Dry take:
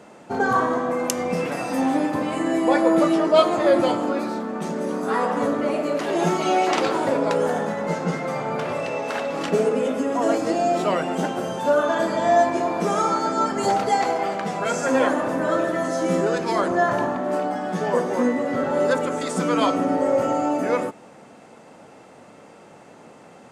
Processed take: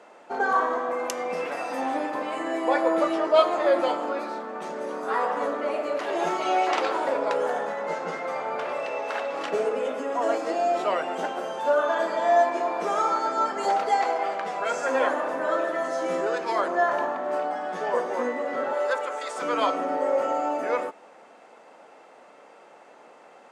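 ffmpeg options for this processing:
-filter_complex "[0:a]asettb=1/sr,asplit=3[s0][s1][s2];[s0]atrim=end=18.734[s3];[s1]atrim=start=18.73:end=19.42,asetpts=PTS-STARTPTS,afade=t=in:d=0.004:c=qsin,afade=t=out:st=0.686:d=0.004:c=qsin,highpass=520[s4];[s2]atrim=start=19.416[s5];[s3][s4]acrossfade=d=0.004:c1=hsin:c2=qsin[s6];[s6][s5]acrossfade=d=0.004:c1=qsin:c2=hsin,highpass=500,highshelf=f=5200:g=-11.5,volume=0.891"

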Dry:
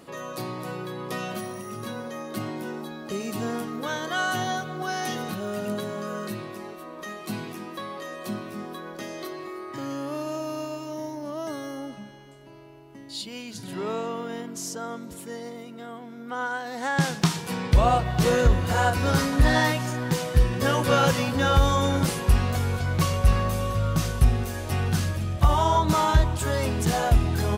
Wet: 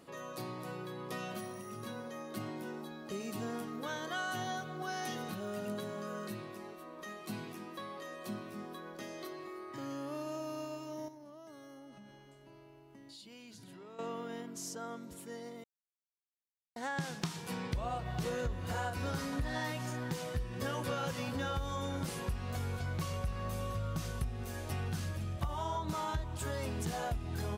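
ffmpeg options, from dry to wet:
-filter_complex "[0:a]asettb=1/sr,asplit=3[s0][s1][s2];[s0]atrim=end=11.084[s3];[s1]atrim=start=11.08:end=13.99,asetpts=PTS-STARTPTS,afade=t=in:d=0.004:c=qsin,afade=t=out:st=2.906:d=0.004:c=qsin,acompressor=threshold=0.00891:ratio=5:attack=3.2:release=140:knee=1:detection=peak[s4];[s2]atrim=start=13.986[s5];[s3][s4]acrossfade=d=0.004:c1=hsin:c2=qsin[s6];[s6][s5]acrossfade=d=0.004:c1=qsin:c2=hsin,asplit=3[s7][s8][s9];[s7]atrim=end=15.64,asetpts=PTS-STARTPTS,afade=t=out:st=15.636:d=0.004:c=hsin[s10];[s8]atrim=start=15.64:end=16.76,asetpts=PTS-STARTPTS,volume=0[s11];[s9]atrim=start=16.76,asetpts=PTS-STARTPTS,afade=t=in:d=0.004:c=hsin[s12];[s10][s11][s12]concat=n=3:v=0:a=1,acompressor=threshold=0.0631:ratio=6,volume=0.355"

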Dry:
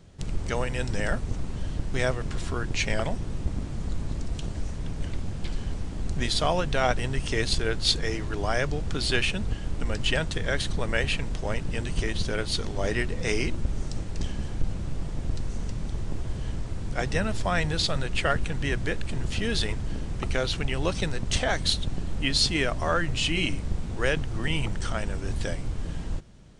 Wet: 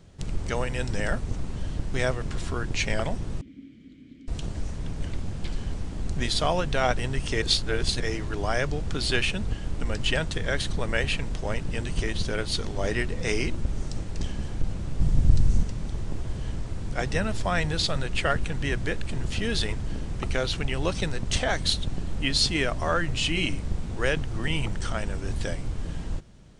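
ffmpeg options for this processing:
-filter_complex "[0:a]asettb=1/sr,asplit=3[s0][s1][s2];[s0]atrim=end=3.414[s3];[s1]atrim=start=3.41:end=4.28,asetpts=PTS-STARTPTS,afade=t=in:d=0.004:c=qsin,afade=t=out:st=0.866:d=0.004:c=qsin,asplit=3[s4][s5][s6];[s4]bandpass=f=270:t=q:w=8,volume=1[s7];[s5]bandpass=f=2290:t=q:w=8,volume=0.501[s8];[s6]bandpass=f=3010:t=q:w=8,volume=0.355[s9];[s7][s8][s9]amix=inputs=3:normalize=0[s10];[s2]atrim=start=4.276[s11];[s3][s10]acrossfade=d=0.004:c1=hsin:c2=qsin[s12];[s12][s11]acrossfade=d=0.004:c1=qsin:c2=hsin,asettb=1/sr,asplit=3[s13][s14][s15];[s13]atrim=end=15.004[s16];[s14]atrim=start=15:end=15.63,asetpts=PTS-STARTPTS,afade=t=in:d=0.004:c=qsin,afade=t=out:st=0.626:d=0.004:c=qsin,bass=f=250:g=11,treble=f=4000:g=4[s17];[s15]atrim=start=15.626[s18];[s16][s17]acrossfade=d=0.004:c1=hsin:c2=qsin[s19];[s19][s18]acrossfade=d=0.004:c1=qsin:c2=hsin,asplit=3[s20][s21][s22];[s20]atrim=end=7.422[s23];[s21]atrim=start=7.418:end=8.002,asetpts=PTS-STARTPTS,areverse[s24];[s22]atrim=start=7.998[s25];[s23][s24]acrossfade=d=0.004:c1=hsin:c2=hsin[s26];[s26][s25]acrossfade=d=0.004:c1=hsin:c2=hsin"

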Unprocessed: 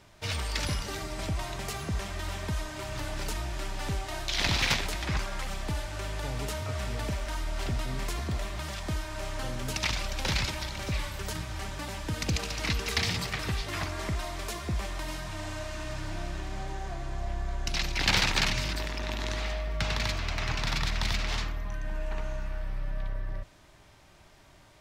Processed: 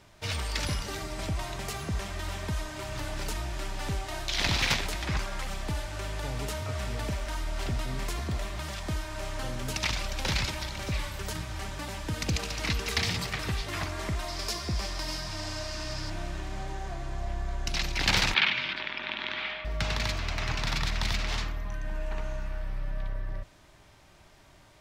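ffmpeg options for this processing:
-filter_complex "[0:a]asettb=1/sr,asplit=3[s0][s1][s2];[s0]atrim=end=14.284[s3];[s1]atrim=start=14.28:end=16.1,asetpts=PTS-STARTPTS,afade=t=in:d=0.004:c=qsin,afade=t=out:st=1.816:d=0.004:c=qsin,equalizer=f=5000:w=2.7:g=13[s4];[s2]atrim=start=16.096[s5];[s3][s4]acrossfade=d=0.004:c1=hsin:c2=qsin[s6];[s6][s5]acrossfade=d=0.004:c1=qsin:c2=hsin,asettb=1/sr,asplit=3[s7][s8][s9];[s7]atrim=end=18.344[s10];[s8]atrim=start=18.34:end=19.65,asetpts=PTS-STARTPTS,afade=t=in:d=0.004:c=qsin,afade=t=out:st=1.306:d=0.004:c=qsin,highpass=270,equalizer=f=300:t=q:w=4:g=-5,equalizer=f=470:t=q:w=4:g=-8,equalizer=f=670:t=q:w=4:g=-6,equalizer=f=1500:t=q:w=4:g=4,equalizer=f=2300:t=q:w=4:g=7,equalizer=f=3300:t=q:w=4:g=7,lowpass=f=3800:w=0.5412,lowpass=f=3800:w=1.3066[s11];[s9]atrim=start=19.646[s12];[s10][s11]acrossfade=d=0.004:c1=hsin:c2=qsin[s13];[s13][s12]acrossfade=d=0.004:c1=qsin:c2=hsin"

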